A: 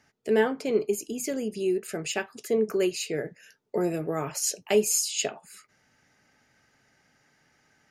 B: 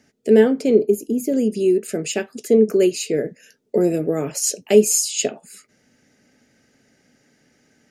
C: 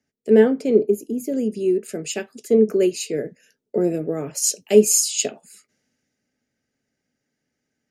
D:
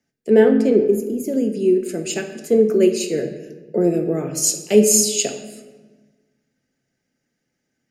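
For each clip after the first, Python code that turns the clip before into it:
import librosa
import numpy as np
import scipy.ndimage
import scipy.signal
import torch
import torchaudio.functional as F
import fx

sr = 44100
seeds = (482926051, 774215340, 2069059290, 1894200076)

y1 = fx.graphic_eq_10(x, sr, hz=(500, 1000, 8000), db=(7, -9, 4))
y1 = fx.spec_box(y1, sr, start_s=0.75, length_s=0.58, low_hz=900.0, high_hz=10000.0, gain_db=-10)
y1 = fx.peak_eq(y1, sr, hz=240.0, db=9.5, octaves=0.75)
y1 = y1 * librosa.db_to_amplitude(3.5)
y2 = fx.band_widen(y1, sr, depth_pct=40)
y2 = y2 * librosa.db_to_amplitude(-2.5)
y3 = fx.room_shoebox(y2, sr, seeds[0], volume_m3=880.0, walls='mixed', distance_m=0.8)
y3 = y3 * librosa.db_to_amplitude(1.5)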